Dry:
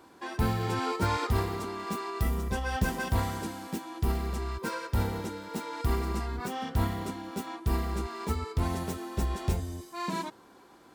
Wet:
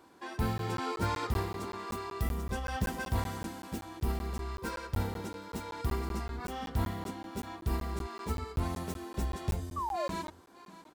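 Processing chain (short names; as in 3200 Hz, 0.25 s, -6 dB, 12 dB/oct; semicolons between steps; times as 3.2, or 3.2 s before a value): echo 0.599 s -16 dB; painted sound fall, 9.76–10.08, 530–1200 Hz -30 dBFS; crackling interface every 0.19 s, samples 512, zero, from 0.58; gain -4 dB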